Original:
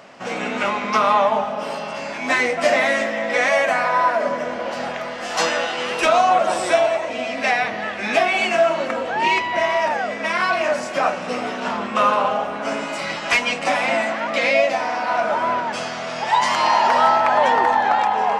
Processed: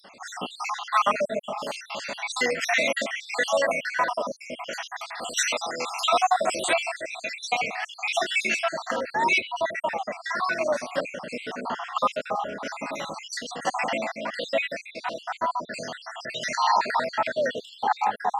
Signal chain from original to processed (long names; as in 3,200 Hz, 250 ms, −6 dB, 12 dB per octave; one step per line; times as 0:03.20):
time-frequency cells dropped at random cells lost 65%
high-shelf EQ 2,500 Hz +10.5 dB, from 0:09.41 +3 dB
level −4 dB